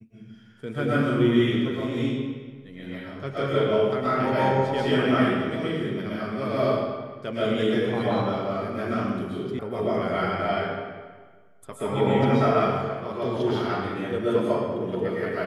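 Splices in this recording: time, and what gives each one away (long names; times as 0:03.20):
0:09.59: cut off before it has died away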